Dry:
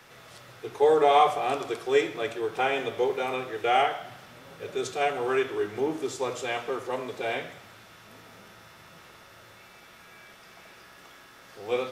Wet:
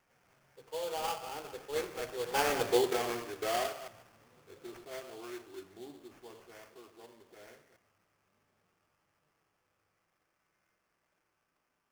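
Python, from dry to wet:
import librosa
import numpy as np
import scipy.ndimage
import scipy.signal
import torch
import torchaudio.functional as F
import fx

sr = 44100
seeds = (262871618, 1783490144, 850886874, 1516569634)

y = fx.reverse_delay(x, sr, ms=131, wet_db=-11)
y = fx.doppler_pass(y, sr, speed_mps=34, closest_m=10.0, pass_at_s=2.69)
y = fx.sample_hold(y, sr, seeds[0], rate_hz=3900.0, jitter_pct=20)
y = y * librosa.db_to_amplitude(-1.0)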